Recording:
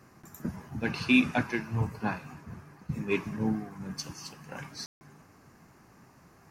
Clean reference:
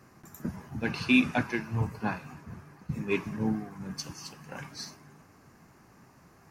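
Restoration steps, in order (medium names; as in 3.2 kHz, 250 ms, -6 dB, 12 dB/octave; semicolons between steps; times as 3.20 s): room tone fill 4.86–5.01 s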